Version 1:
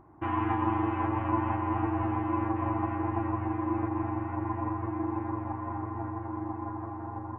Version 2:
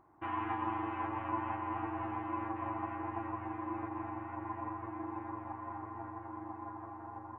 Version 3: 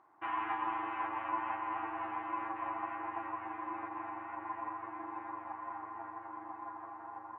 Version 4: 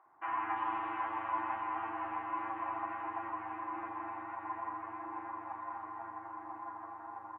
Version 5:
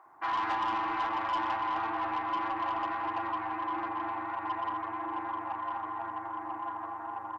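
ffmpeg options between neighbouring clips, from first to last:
-af "lowshelf=f=390:g=-11,volume=-4dB"
-af "bandpass=f=1.9k:t=q:w=0.54:csg=0,volume=3.5dB"
-filter_complex "[0:a]acrossover=split=410|2800[a][b][c];[a]adelay=60[d];[c]adelay=340[e];[d][b][e]amix=inputs=3:normalize=0,volume=1dB"
-af "asoftclip=type=tanh:threshold=-33.5dB,volume=8dB"

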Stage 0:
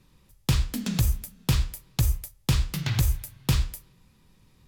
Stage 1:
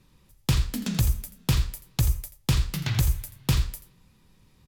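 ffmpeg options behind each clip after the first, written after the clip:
-af "aecho=1:1:84:0.188"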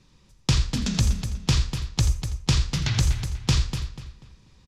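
-filter_complex "[0:a]lowpass=f=6.1k:t=q:w=1.8,asplit=2[a][b];[b]adelay=244,lowpass=f=4.8k:p=1,volume=-8.5dB,asplit=2[c][d];[d]adelay=244,lowpass=f=4.8k:p=1,volume=0.32,asplit=2[e][f];[f]adelay=244,lowpass=f=4.8k:p=1,volume=0.32,asplit=2[g][h];[h]adelay=244,lowpass=f=4.8k:p=1,volume=0.32[i];[a][c][e][g][i]amix=inputs=5:normalize=0,volume=1.5dB"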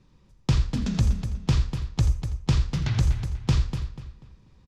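-af "highshelf=f=2.1k:g=-11.5"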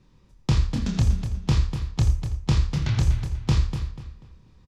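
-filter_complex "[0:a]asplit=2[a][b];[b]adelay=27,volume=-5.5dB[c];[a][c]amix=inputs=2:normalize=0"

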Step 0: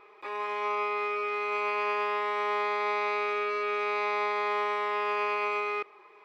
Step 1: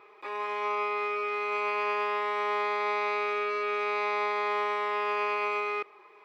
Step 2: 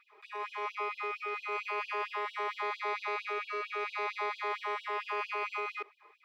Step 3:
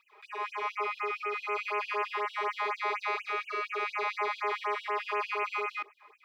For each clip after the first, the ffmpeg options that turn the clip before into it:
-af "highpass=80"
-af "afftfilt=real='re*gte(b*sr/1024,210*pow(2800/210,0.5+0.5*sin(2*PI*4.4*pts/sr)))':imag='im*gte(b*sr/1024,210*pow(2800/210,0.5+0.5*sin(2*PI*4.4*pts/sr)))':win_size=1024:overlap=0.75,volume=-4dB"
-af "afftfilt=real='re*(1-between(b*sr/1024,270*pow(4600/270,0.5+0.5*sin(2*PI*4.1*pts/sr))/1.41,270*pow(4600/270,0.5+0.5*sin(2*PI*4.1*pts/sr))*1.41))':imag='im*(1-between(b*sr/1024,270*pow(4600/270,0.5+0.5*sin(2*PI*4.1*pts/sr))/1.41,270*pow(4600/270,0.5+0.5*sin(2*PI*4.1*pts/sr))*1.41))':win_size=1024:overlap=0.75,volume=4dB"

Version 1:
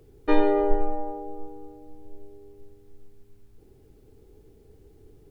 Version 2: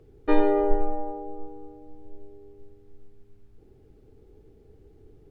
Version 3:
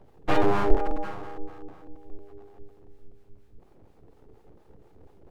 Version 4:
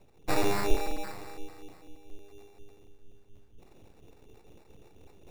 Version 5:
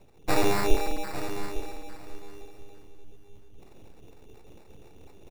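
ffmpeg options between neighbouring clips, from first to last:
-af "lowpass=f=2.7k:p=1,bandreject=f=1k:w=19"
-filter_complex "[0:a]acrossover=split=480[a][b];[a]aeval=exprs='val(0)*(1-0.7/2+0.7/2*cos(2*PI*4.2*n/s))':c=same[c];[b]aeval=exprs='val(0)*(1-0.7/2-0.7/2*cos(2*PI*4.2*n/s))':c=same[d];[c][d]amix=inputs=2:normalize=0,aeval=exprs='abs(val(0))':c=same,volume=4.5dB"
-af "areverse,acompressor=mode=upward:threshold=-39dB:ratio=2.5,areverse,acrusher=samples=14:mix=1:aa=0.000001,volume=-5.5dB"
-af "aecho=1:1:853|1706:0.282|0.0451,volume=3.5dB"

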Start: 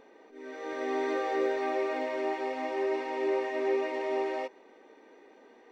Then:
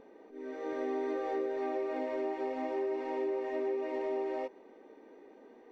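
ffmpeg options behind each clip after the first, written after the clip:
-af "tiltshelf=f=820:g=6,acompressor=threshold=-29dB:ratio=6,volume=-2dB"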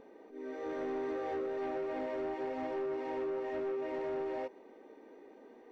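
-af "asoftclip=type=tanh:threshold=-31dB"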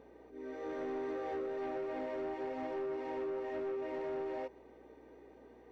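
-af "aeval=exprs='val(0)+0.000447*(sin(2*PI*60*n/s)+sin(2*PI*2*60*n/s)/2+sin(2*PI*3*60*n/s)/3+sin(2*PI*4*60*n/s)/4+sin(2*PI*5*60*n/s)/5)':c=same,volume=-2dB"

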